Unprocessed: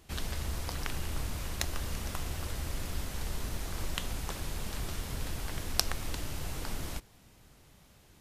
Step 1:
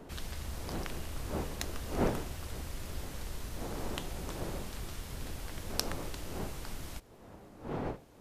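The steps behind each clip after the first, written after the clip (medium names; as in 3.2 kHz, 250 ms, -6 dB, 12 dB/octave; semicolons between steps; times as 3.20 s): wind noise 520 Hz -37 dBFS; trim -5 dB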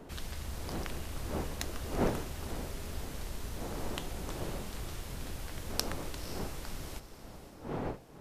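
echo that smears into a reverb 521 ms, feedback 42%, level -12 dB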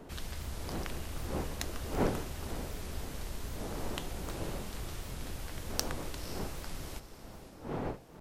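warped record 78 rpm, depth 160 cents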